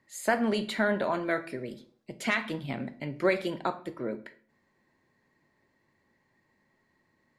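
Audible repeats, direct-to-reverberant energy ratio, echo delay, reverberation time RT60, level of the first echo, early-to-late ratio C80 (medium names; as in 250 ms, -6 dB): no echo, 11.0 dB, no echo, 0.50 s, no echo, 19.5 dB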